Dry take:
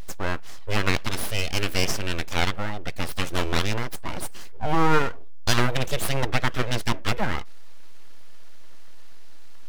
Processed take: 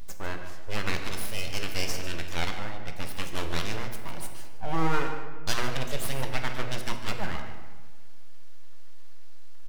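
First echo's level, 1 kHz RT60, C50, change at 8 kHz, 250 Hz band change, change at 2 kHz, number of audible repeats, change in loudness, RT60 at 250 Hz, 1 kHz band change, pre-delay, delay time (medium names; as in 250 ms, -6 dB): -12.5 dB, 1.4 s, 6.0 dB, -5.0 dB, -7.0 dB, -6.5 dB, 1, -6.5 dB, 1.7 s, -6.5 dB, 3 ms, 149 ms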